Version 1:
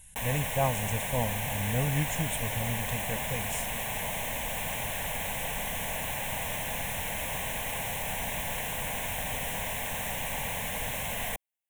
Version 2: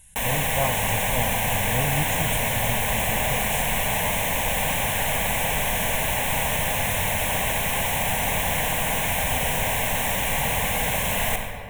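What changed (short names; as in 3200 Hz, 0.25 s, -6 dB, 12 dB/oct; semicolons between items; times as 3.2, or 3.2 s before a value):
background +5.5 dB; reverb: on, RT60 2.2 s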